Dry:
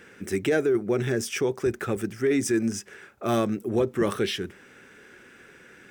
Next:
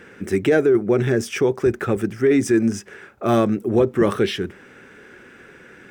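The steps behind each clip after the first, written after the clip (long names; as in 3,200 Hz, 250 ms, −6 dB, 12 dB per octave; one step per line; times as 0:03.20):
high-shelf EQ 3,000 Hz −8.5 dB
level +7 dB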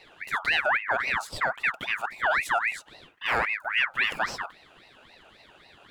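ring modulator whose carrier an LFO sweeps 1,700 Hz, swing 40%, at 3.7 Hz
level −6 dB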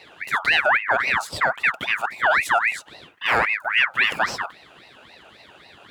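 high-pass filter 64 Hz
level +6 dB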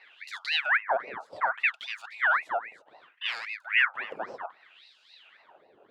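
auto-filter band-pass sine 0.65 Hz 440–4,900 Hz
level −1.5 dB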